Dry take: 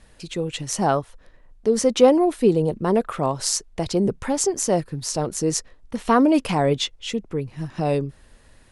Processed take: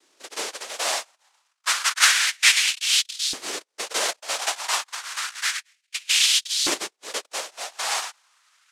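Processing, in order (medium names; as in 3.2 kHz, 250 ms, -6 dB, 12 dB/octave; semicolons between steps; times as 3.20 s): 2.36–3.06 s: tilt shelf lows +3.5 dB, about 1.3 kHz; noise-vocoded speech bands 1; LFO high-pass saw up 0.3 Hz 310–4100 Hz; trim -6 dB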